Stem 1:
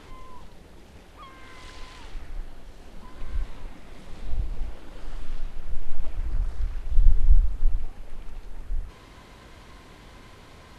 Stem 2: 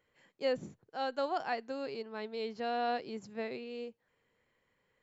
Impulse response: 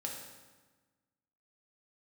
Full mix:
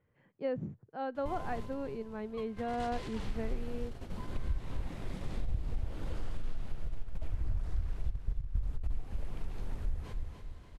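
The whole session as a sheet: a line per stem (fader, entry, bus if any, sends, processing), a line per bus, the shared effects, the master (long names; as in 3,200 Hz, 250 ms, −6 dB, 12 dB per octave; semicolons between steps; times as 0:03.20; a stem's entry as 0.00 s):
−4.0 dB, 1.15 s, no send, echo send −9 dB, noise gate −41 dBFS, range −15 dB; parametric band 500 Hz +2.5 dB 1.5 octaves; compressor whose output falls as the input rises −19 dBFS, ratio −0.5
−3.0 dB, 0.00 s, no send, no echo send, low-pass filter 1,900 Hz 12 dB per octave; low-shelf EQ 250 Hz +6 dB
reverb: not used
echo: repeating echo 289 ms, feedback 40%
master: parametric band 110 Hz +10 dB 1.9 octaves; downward compressor 4 to 1, threshold −29 dBFS, peak gain reduction 11.5 dB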